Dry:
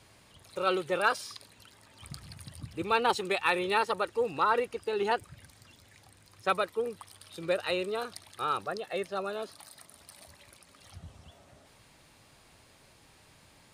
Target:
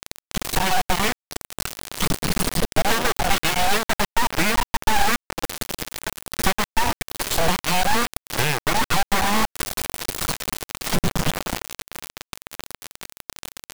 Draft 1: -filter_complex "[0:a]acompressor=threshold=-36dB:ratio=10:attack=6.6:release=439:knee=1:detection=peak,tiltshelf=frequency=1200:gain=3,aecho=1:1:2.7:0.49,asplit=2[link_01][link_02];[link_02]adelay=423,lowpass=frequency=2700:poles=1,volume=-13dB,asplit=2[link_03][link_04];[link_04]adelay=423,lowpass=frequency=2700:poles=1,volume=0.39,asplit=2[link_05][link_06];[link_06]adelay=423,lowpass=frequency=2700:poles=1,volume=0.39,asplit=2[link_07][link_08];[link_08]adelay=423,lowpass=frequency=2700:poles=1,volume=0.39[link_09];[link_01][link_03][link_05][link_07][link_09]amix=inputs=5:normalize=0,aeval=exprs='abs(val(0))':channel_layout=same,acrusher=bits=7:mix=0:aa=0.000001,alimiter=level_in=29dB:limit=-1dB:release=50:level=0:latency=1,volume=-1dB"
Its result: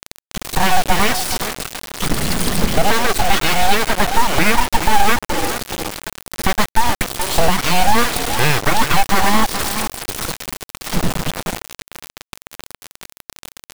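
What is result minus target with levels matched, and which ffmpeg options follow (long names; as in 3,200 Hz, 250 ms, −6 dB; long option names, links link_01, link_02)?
downward compressor: peak gain reduction −9.5 dB
-filter_complex "[0:a]acompressor=threshold=-46.5dB:ratio=10:attack=6.6:release=439:knee=1:detection=peak,tiltshelf=frequency=1200:gain=3,aecho=1:1:2.7:0.49,asplit=2[link_01][link_02];[link_02]adelay=423,lowpass=frequency=2700:poles=1,volume=-13dB,asplit=2[link_03][link_04];[link_04]adelay=423,lowpass=frequency=2700:poles=1,volume=0.39,asplit=2[link_05][link_06];[link_06]adelay=423,lowpass=frequency=2700:poles=1,volume=0.39,asplit=2[link_07][link_08];[link_08]adelay=423,lowpass=frequency=2700:poles=1,volume=0.39[link_09];[link_01][link_03][link_05][link_07][link_09]amix=inputs=5:normalize=0,aeval=exprs='abs(val(0))':channel_layout=same,acrusher=bits=7:mix=0:aa=0.000001,alimiter=level_in=29dB:limit=-1dB:release=50:level=0:latency=1,volume=-1dB"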